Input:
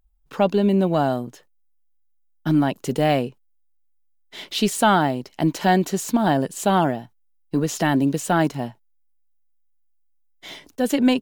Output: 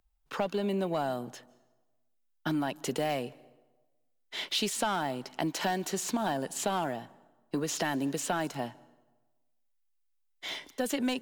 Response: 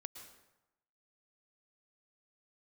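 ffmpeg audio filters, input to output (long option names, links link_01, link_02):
-filter_complex "[0:a]asplit=2[link_01][link_02];[link_02]highpass=frequency=720:poles=1,volume=10dB,asoftclip=type=tanh:threshold=-6dB[link_03];[link_01][link_03]amix=inputs=2:normalize=0,lowpass=frequency=6700:poles=1,volume=-6dB,acrossover=split=150|6100[link_04][link_05][link_06];[link_04]acompressor=threshold=-42dB:ratio=4[link_07];[link_05]acompressor=threshold=-25dB:ratio=4[link_08];[link_06]acompressor=threshold=-33dB:ratio=4[link_09];[link_07][link_08][link_09]amix=inputs=3:normalize=0,asplit=2[link_10][link_11];[1:a]atrim=start_sample=2205,asetrate=34398,aresample=44100[link_12];[link_11][link_12]afir=irnorm=-1:irlink=0,volume=-12.5dB[link_13];[link_10][link_13]amix=inputs=2:normalize=0,volume=-5.5dB"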